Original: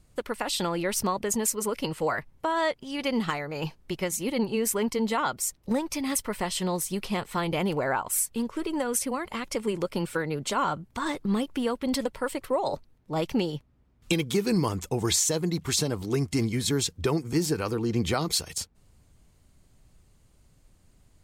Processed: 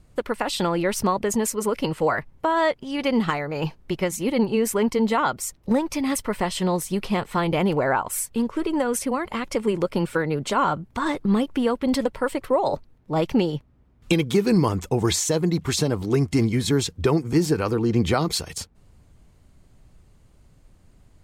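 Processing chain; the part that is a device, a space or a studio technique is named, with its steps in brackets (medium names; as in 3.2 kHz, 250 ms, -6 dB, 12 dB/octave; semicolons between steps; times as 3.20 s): behind a face mask (treble shelf 3.3 kHz -8 dB); trim +6 dB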